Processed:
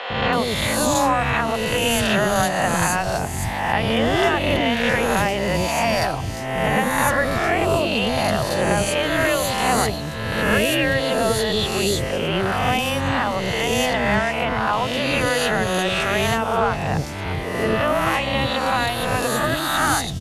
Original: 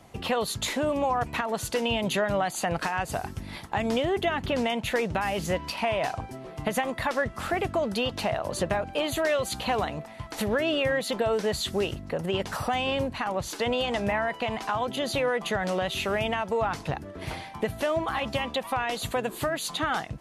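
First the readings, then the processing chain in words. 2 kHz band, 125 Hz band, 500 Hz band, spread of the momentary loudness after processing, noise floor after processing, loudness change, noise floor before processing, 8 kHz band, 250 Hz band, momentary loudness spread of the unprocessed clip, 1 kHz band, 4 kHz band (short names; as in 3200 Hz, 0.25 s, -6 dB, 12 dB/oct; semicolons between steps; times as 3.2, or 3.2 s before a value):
+10.0 dB, +10.5 dB, +6.0 dB, 4 LU, -27 dBFS, +8.0 dB, -42 dBFS, +10.5 dB, +8.0 dB, 6 LU, +8.5 dB, +8.5 dB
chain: spectral swells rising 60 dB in 1.37 s; three bands offset in time mids, lows, highs 0.1/0.33 s, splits 510/4100 Hz; gain +5.5 dB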